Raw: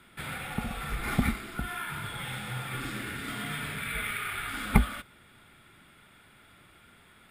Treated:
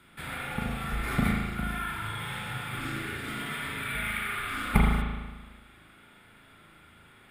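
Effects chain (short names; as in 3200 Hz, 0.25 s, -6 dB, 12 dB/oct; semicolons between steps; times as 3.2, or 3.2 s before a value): spring tank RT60 1.3 s, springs 37 ms, chirp 55 ms, DRR -1.5 dB; gain -2 dB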